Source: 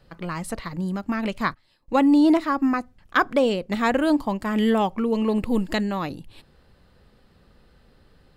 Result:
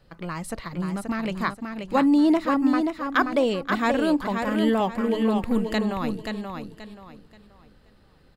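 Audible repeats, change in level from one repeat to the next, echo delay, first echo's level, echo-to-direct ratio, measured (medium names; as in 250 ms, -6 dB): 3, -11.0 dB, 530 ms, -5.5 dB, -5.0 dB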